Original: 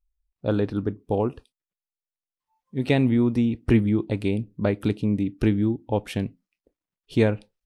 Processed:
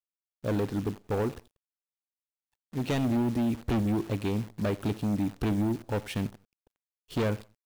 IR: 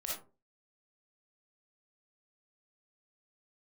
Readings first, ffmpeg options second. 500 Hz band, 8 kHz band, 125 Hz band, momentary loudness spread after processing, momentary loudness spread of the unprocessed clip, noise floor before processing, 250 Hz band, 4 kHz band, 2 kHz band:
-6.5 dB, no reading, -5.5 dB, 8 LU, 9 LU, under -85 dBFS, -6.0 dB, -3.0 dB, -6.0 dB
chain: -filter_complex "[0:a]asoftclip=type=hard:threshold=0.0841,asplit=2[s0][s1];[s1]adelay=90,lowpass=f=3500:p=1,volume=0.1,asplit=2[s2][s3];[s3]adelay=90,lowpass=f=3500:p=1,volume=0.3[s4];[s0][s2][s4]amix=inputs=3:normalize=0,acrusher=bits=8:dc=4:mix=0:aa=0.000001,volume=0.75"

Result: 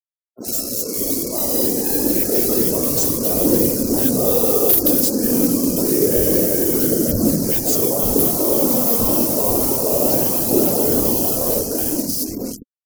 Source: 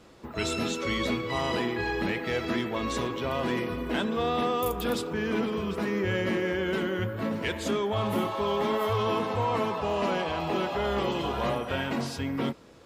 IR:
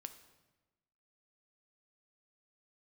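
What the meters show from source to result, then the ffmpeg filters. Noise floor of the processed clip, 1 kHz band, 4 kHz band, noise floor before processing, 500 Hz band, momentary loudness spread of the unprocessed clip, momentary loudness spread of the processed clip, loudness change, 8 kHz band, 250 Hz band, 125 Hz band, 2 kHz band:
-38 dBFS, -0.5 dB, +5.5 dB, -40 dBFS, +9.0 dB, 3 LU, 6 LU, +13.0 dB, +25.0 dB, +11.0 dB, +6.5 dB, -6.5 dB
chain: -filter_complex "[0:a]highshelf=f=6600:g=-3.5,bandreject=f=430:w=12,afftfilt=real='hypot(re,im)*cos(2*PI*random(0))':imag='hypot(re,im)*sin(2*PI*random(1))':win_size=512:overlap=0.75,bandreject=f=67.06:t=h:w=4,bandreject=f=134.12:t=h:w=4,bandreject=f=201.18:t=h:w=4,bandreject=f=268.24:t=h:w=4,bandreject=f=335.3:t=h:w=4,bandreject=f=402.36:t=h:w=4,bandreject=f=469.42:t=h:w=4,bandreject=f=536.48:t=h:w=4,bandreject=f=603.54:t=h:w=4,bandreject=f=670.6:t=h:w=4,bandreject=f=737.66:t=h:w=4,bandreject=f=804.72:t=h:w=4,bandreject=f=871.78:t=h:w=4,bandreject=f=938.84:t=h:w=4,dynaudnorm=f=230:g=13:m=3.55,acrossover=split=210|1400[s0][s1][s2];[s2]adelay=70[s3];[s0]adelay=100[s4];[s4][s1][s3]amix=inputs=3:normalize=0,acrusher=bits=5:mix=0:aa=0.5,aexciter=amount=13:drive=9.1:freq=5300,afftfilt=real='re*gte(hypot(re,im),0.0158)':imag='im*gte(hypot(re,im),0.0158)':win_size=1024:overlap=0.75,aphaser=in_gain=1:out_gain=1:delay=4.2:decay=0.29:speed=0.28:type=triangular,acontrast=75,equalizer=f=250:t=o:w=1:g=10,equalizer=f=500:t=o:w=1:g=7,equalizer=f=1000:t=o:w=1:g=-6,equalizer=f=2000:t=o:w=1:g=-10,equalizer=f=8000:t=o:w=1:g=-10,volume=0.531"

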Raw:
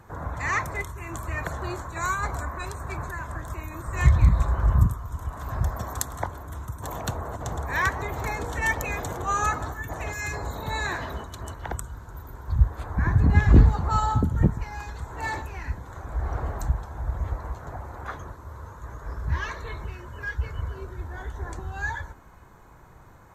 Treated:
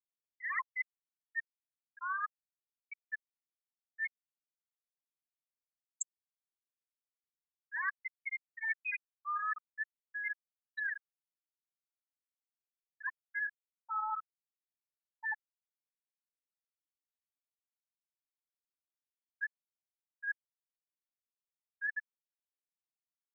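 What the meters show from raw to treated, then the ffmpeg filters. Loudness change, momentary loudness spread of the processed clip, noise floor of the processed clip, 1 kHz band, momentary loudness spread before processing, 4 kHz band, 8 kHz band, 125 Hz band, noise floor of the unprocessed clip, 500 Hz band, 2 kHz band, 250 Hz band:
-12.0 dB, 8 LU, under -85 dBFS, -13.5 dB, 15 LU, under -25 dB, -13.0 dB, under -40 dB, -49 dBFS, under -40 dB, -7.0 dB, under -40 dB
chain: -af "highpass=1300,afftfilt=real='re*gte(hypot(re,im),0.158)':imag='im*gte(hypot(re,im),0.158)':win_size=1024:overlap=0.75,areverse,acompressor=threshold=0.00708:ratio=5,areverse,volume=2.37"

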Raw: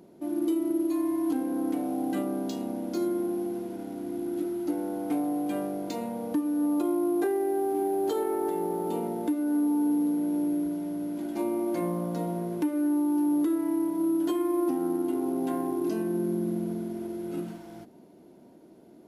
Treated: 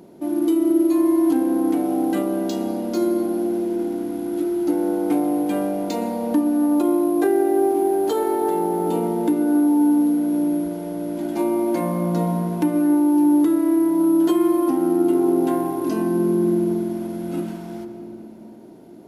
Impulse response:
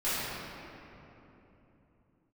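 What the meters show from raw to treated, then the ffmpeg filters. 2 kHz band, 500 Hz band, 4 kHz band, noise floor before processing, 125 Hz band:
+8.0 dB, +8.5 dB, no reading, -53 dBFS, +9.5 dB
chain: -filter_complex "[0:a]equalizer=f=890:t=o:w=0.21:g=2,asplit=2[s0][s1];[1:a]atrim=start_sample=2205,adelay=119[s2];[s1][s2]afir=irnorm=-1:irlink=0,volume=0.1[s3];[s0][s3]amix=inputs=2:normalize=0,volume=2.37"

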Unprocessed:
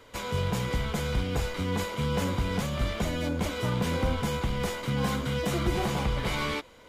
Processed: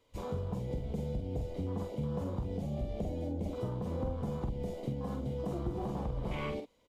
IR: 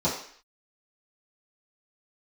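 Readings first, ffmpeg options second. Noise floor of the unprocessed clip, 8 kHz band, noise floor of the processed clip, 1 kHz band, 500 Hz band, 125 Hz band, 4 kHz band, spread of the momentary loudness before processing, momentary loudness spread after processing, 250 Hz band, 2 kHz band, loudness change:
-53 dBFS, under -20 dB, -67 dBFS, -11.5 dB, -6.5 dB, -6.5 dB, -20.5 dB, 3 LU, 2 LU, -6.5 dB, -19.0 dB, -7.5 dB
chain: -filter_complex "[0:a]afwtdn=0.0316,equalizer=f=1500:t=o:w=0.72:g=-11.5,acompressor=threshold=0.0224:ratio=6,asplit=2[s0][s1];[s1]adelay=46,volume=0.501[s2];[s0][s2]amix=inputs=2:normalize=0"

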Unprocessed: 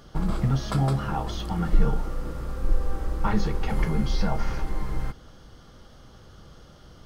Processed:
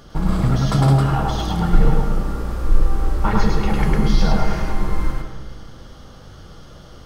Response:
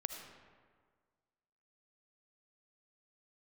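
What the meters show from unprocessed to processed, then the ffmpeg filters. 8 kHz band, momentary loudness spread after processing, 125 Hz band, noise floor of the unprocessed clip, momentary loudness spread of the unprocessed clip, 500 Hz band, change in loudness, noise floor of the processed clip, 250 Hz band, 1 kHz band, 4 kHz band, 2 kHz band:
no reading, 10 LU, +8.5 dB, -50 dBFS, 10 LU, +7.5 dB, +8.0 dB, -41 dBFS, +8.0 dB, +8.0 dB, +8.0 dB, +8.0 dB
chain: -filter_complex "[0:a]asplit=2[s0][s1];[1:a]atrim=start_sample=2205,adelay=104[s2];[s1][s2]afir=irnorm=-1:irlink=0,volume=1.06[s3];[s0][s3]amix=inputs=2:normalize=0,volume=1.78"

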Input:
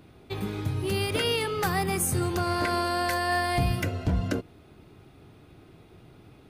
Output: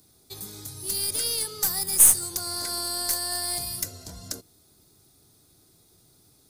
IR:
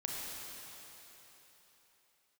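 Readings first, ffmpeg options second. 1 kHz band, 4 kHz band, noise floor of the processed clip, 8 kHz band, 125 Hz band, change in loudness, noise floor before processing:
-11.5 dB, +3.0 dB, -60 dBFS, +14.0 dB, -15.5 dB, +5.0 dB, -54 dBFS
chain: -filter_complex "[0:a]acrossover=split=490|6000[s0][s1][s2];[s0]alimiter=level_in=1.26:limit=0.0631:level=0:latency=1,volume=0.794[s3];[s3][s1][s2]amix=inputs=3:normalize=0,aexciter=amount=15.9:drive=4.8:freq=4200,aeval=exprs='3.35*(cos(1*acos(clip(val(0)/3.35,-1,1)))-cos(1*PI/2))+0.168*(cos(8*acos(clip(val(0)/3.35,-1,1)))-cos(8*PI/2))':c=same,volume=0.251"

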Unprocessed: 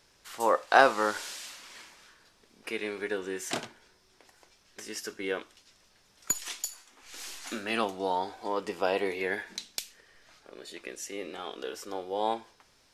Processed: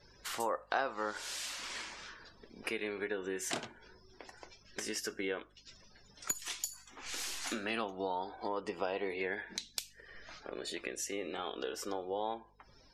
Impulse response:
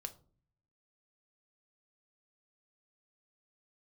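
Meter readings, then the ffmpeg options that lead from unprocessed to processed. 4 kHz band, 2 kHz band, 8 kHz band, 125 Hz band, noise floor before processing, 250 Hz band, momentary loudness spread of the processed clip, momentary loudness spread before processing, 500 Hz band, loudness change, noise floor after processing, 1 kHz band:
-2.5 dB, -7.5 dB, -3.0 dB, -4.0 dB, -65 dBFS, -4.5 dB, 15 LU, 18 LU, -7.0 dB, -7.5 dB, -62 dBFS, -9.5 dB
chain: -af "acompressor=threshold=0.00447:ratio=3,afftdn=nr=29:nf=-63,aeval=exprs='val(0)+0.000141*(sin(2*PI*50*n/s)+sin(2*PI*2*50*n/s)/2+sin(2*PI*3*50*n/s)/3+sin(2*PI*4*50*n/s)/4+sin(2*PI*5*50*n/s)/5)':c=same,volume=2.66"

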